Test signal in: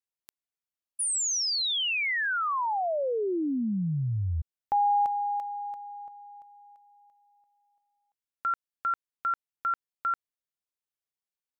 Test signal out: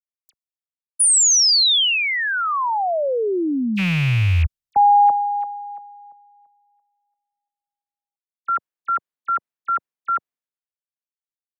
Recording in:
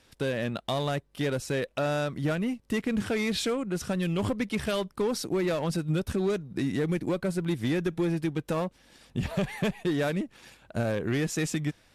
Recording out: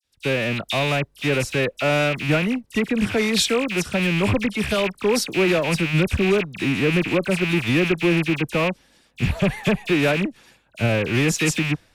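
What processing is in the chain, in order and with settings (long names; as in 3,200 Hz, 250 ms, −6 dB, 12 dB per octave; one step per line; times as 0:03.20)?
loose part that buzzes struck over −37 dBFS, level −21 dBFS
all-pass dispersion lows, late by 44 ms, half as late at 2,500 Hz
multiband upward and downward expander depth 70%
level +7.5 dB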